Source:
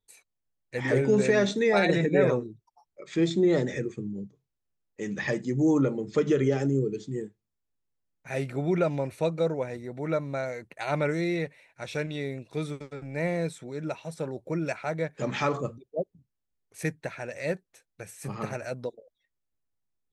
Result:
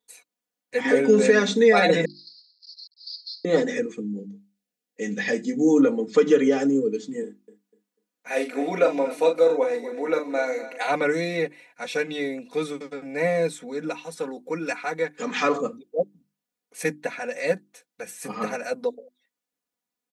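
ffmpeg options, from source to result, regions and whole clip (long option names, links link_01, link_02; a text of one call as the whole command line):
ffmpeg -i in.wav -filter_complex "[0:a]asettb=1/sr,asplit=3[link_01][link_02][link_03];[link_01]atrim=end=2.054[link_04];[link_02]atrim=start=2.05:end=3.45,asetpts=PTS-STARTPTS,afade=type=in:duration=0.004:curve=qsin,afade=type=out:start_time=1.396:duration=0.004:curve=qsin,aeval=exprs='val(0)+0.5*0.0531*sgn(val(0))':channel_layout=same,asuperpass=centerf=4600:order=8:qfactor=4.5,agate=range=-15dB:threshold=-52dB:ratio=16:release=100:detection=peak[link_05];[link_03]atrim=start=3.446[link_06];[link_04][link_05]acrossfade=duration=0.004:curve1=hsin:curve2=qsin[link_07];[link_07][link_06]acrossfade=duration=0.004:curve1=qsin:curve2=hsin,asettb=1/sr,asplit=3[link_08][link_09][link_10];[link_08]atrim=end=4.004[link_11];[link_09]atrim=start=4:end=5.8,asetpts=PTS-STARTPTS,afade=type=in:duration=0.004:curve=qsin,afade=type=out:start_time=1.796:duration=0.004:curve=qsin,highpass=44,equalizer=frequency=1100:width=2:gain=-11.5,asplit=2[link_12][link_13];[link_13]adelay=20,volume=-10.5dB[link_14];[link_12][link_14]amix=inputs=2:normalize=0,atrim=end_sample=79380[link_15];[link_10]atrim=start=5.796[link_16];[link_11][link_15]acrossfade=duration=0.004:curve1=hsin:curve2=qsin[link_17];[link_17][link_16]acrossfade=duration=0.004:curve1=qsin:curve2=hsin,asettb=1/sr,asplit=3[link_18][link_19][link_20];[link_18]atrim=end=7.234[link_21];[link_19]atrim=start=7.23:end=10.87,asetpts=PTS-STARTPTS,afade=type=in:duration=0.004:curve=qsin,afade=type=out:start_time=3.636:duration=0.004:curve=qsin,highpass=frequency=230:width=0.5412,highpass=frequency=230:width=1.3066,asplit=2[link_22][link_23];[link_23]adelay=39,volume=-7dB[link_24];[link_22][link_24]amix=inputs=2:normalize=0,atrim=end_sample=160524,aecho=1:1:247|494|741:0.2|0.0499|0.0125,atrim=end_sample=160524[link_25];[link_20]atrim=start=10.866[link_26];[link_21][link_25]acrossfade=duration=0.004:curve1=hsin:curve2=qsin[link_27];[link_27][link_26]acrossfade=duration=0.004:curve1=qsin:curve2=hsin,asettb=1/sr,asplit=3[link_28][link_29][link_30];[link_28]atrim=end=13.904[link_31];[link_29]atrim=start=13.9:end=15.43,asetpts=PTS-STARTPTS,afade=type=in:duration=0.004:curve=qsin,afade=type=out:start_time=1.526:duration=0.004:curve=qsin,highpass=frequency=240:poles=1,equalizer=frequency=610:width_type=o:width=0.31:gain=-10[link_32];[link_30]atrim=start=15.426[link_33];[link_31][link_32]acrossfade=duration=0.004:curve1=hsin:curve2=qsin[link_34];[link_34][link_33]acrossfade=duration=0.004:curve1=qsin:curve2=hsin,highpass=210,bandreject=frequency=50:width_type=h:width=6,bandreject=frequency=100:width_type=h:width=6,bandreject=frequency=150:width_type=h:width=6,bandreject=frequency=200:width_type=h:width=6,bandreject=frequency=250:width_type=h:width=6,bandreject=frequency=300:width_type=h:width=6,bandreject=frequency=350:width_type=h:width=6,aecho=1:1:4.1:0.98,volume=3.5dB" out.wav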